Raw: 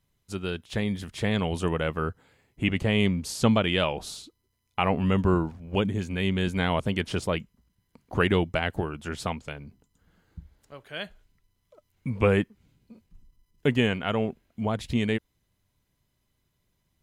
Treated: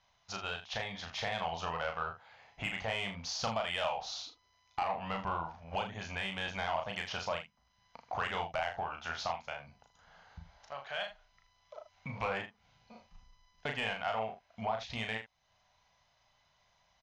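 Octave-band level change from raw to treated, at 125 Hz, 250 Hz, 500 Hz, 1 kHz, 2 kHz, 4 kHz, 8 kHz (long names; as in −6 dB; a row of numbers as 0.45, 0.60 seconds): −18.0, −20.5, −11.5, −3.0, −6.0, −5.5, −6.5 decibels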